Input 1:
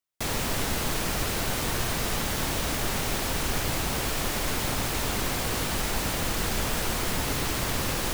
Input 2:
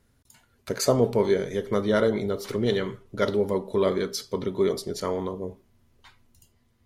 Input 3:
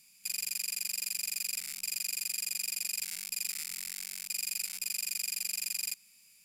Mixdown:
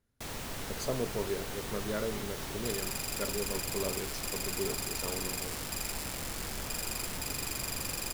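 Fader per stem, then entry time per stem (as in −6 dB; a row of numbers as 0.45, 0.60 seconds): −11.5, −13.0, −3.5 decibels; 0.00, 0.00, 2.40 seconds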